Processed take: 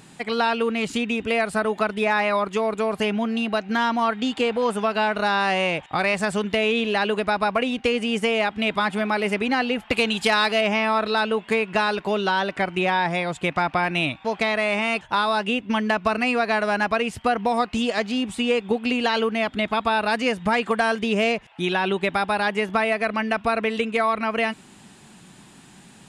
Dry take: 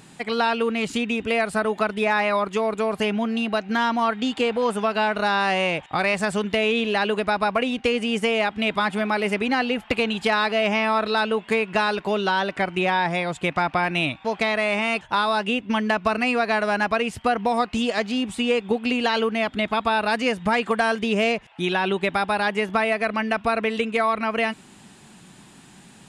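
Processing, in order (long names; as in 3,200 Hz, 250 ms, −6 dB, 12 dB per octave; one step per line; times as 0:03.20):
0:09.92–0:10.61: high-shelf EQ 3,900 Hz +10 dB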